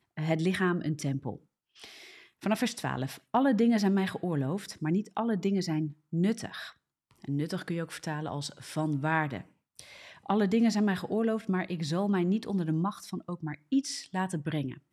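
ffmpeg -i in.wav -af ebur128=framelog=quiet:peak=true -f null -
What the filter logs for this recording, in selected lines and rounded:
Integrated loudness:
  I:         -30.5 LUFS
  Threshold: -41.2 LUFS
Loudness range:
  LRA:         4.9 LU
  Threshold: -51.0 LUFS
  LRA low:   -34.1 LUFS
  LRA high:  -29.2 LUFS
True peak:
  Peak:      -13.7 dBFS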